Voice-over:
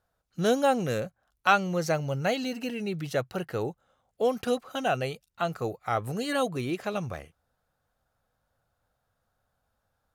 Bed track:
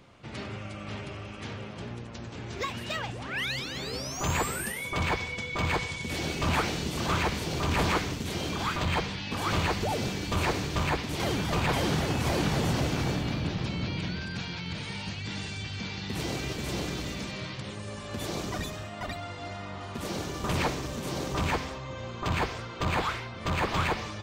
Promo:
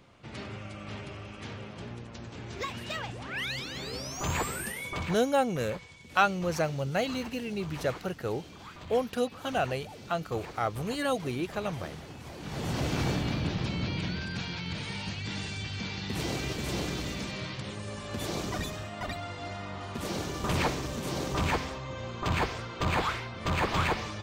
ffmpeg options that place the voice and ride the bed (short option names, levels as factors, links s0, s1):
-filter_complex "[0:a]adelay=4700,volume=0.794[s0];[1:a]volume=5.01,afade=t=out:st=4.89:d=0.29:silence=0.199526,afade=t=in:st=12.4:d=0.61:silence=0.149624[s1];[s0][s1]amix=inputs=2:normalize=0"